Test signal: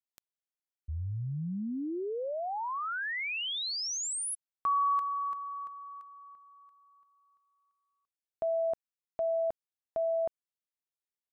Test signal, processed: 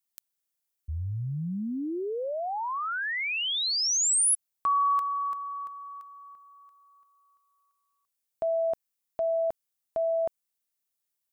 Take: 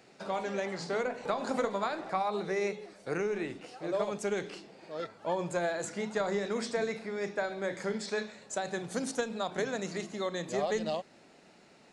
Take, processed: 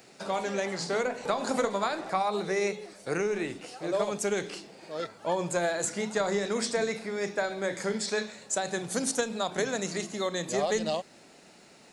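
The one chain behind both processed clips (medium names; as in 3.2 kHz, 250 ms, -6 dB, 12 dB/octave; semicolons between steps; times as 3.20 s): treble shelf 6.2 kHz +12 dB; trim +3 dB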